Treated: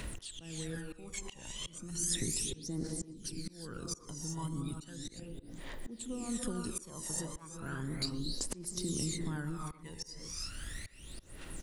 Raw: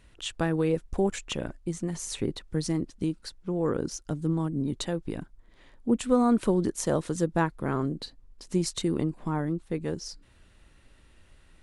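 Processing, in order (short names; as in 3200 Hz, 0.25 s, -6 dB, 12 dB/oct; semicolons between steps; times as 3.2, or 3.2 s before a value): compressor 3:1, threshold -45 dBFS, peak gain reduction 20 dB; high shelf 2800 Hz +9 dB; non-linear reverb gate 0.38 s rising, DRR 4 dB; phaser 0.35 Hz, delay 1.1 ms, feedback 74%; auto swell 0.574 s; high shelf 7800 Hz +9 dB; speakerphone echo 0.12 s, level -17 dB; three-band squash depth 40%; gain +2.5 dB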